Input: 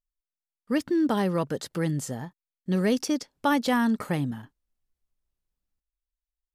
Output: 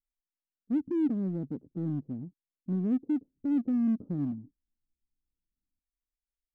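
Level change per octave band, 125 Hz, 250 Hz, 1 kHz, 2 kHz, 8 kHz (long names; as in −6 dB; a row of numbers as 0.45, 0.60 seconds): −5.0 dB, −2.5 dB, below −20 dB, below −25 dB, below −35 dB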